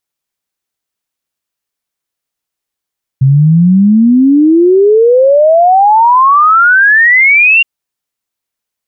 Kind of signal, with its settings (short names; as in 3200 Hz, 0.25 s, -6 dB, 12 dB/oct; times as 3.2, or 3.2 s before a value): log sweep 130 Hz -> 2800 Hz 4.42 s -3 dBFS